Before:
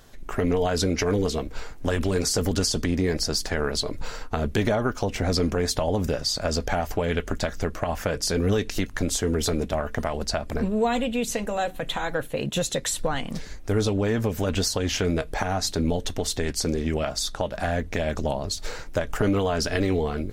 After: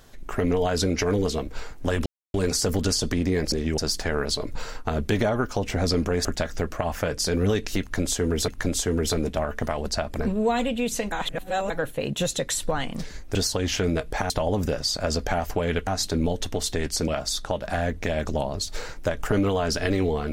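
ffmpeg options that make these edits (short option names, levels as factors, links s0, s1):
-filter_complex "[0:a]asplit=12[s0][s1][s2][s3][s4][s5][s6][s7][s8][s9][s10][s11];[s0]atrim=end=2.06,asetpts=PTS-STARTPTS,afade=t=out:st=2.056:d=0.004:c=hsin,apad=pad_dur=0.28[s12];[s1]atrim=start=2.06:end=3.242,asetpts=PTS-STARTPTS,afade=t=in:d=0.004:c=hsin[s13];[s2]atrim=start=16.718:end=16.982[s14];[s3]atrim=start=3.238:end=5.712[s15];[s4]atrim=start=7.278:end=9.512[s16];[s5]atrim=start=8.838:end=11.482[s17];[s6]atrim=start=11.478:end=12.062,asetpts=PTS-STARTPTS,areverse[s18];[s7]atrim=start=12.058:end=13.712[s19];[s8]atrim=start=14.558:end=15.512[s20];[s9]atrim=start=5.708:end=7.282[s21];[s10]atrim=start=15.508:end=16.722[s22];[s11]atrim=start=16.978[s23];[s12][s13]concat=n=2:v=0:a=1[s24];[s24][s14]acrossfade=d=0.004:c1=hsin:c2=hsin[s25];[s25][s15]acrossfade=d=0.004:c1=hsin:c2=hsin[s26];[s26][s16]acrossfade=d=0.004:c1=hsin:c2=hsin[s27];[s27][s17]acrossfade=d=0.004:c1=hsin:c2=hsin[s28];[s28][s18]acrossfade=d=0.004:c1=hsin:c2=hsin[s29];[s29][s19]acrossfade=d=0.004:c1=hsin:c2=hsin[s30];[s30][s20]acrossfade=d=0.004:c1=hsin:c2=hsin[s31];[s31][s21]acrossfade=d=0.004:c1=hsin:c2=hsin[s32];[s32][s22]acrossfade=d=0.004:c1=hsin:c2=hsin[s33];[s33][s23]acrossfade=d=0.004:c1=hsin:c2=hsin"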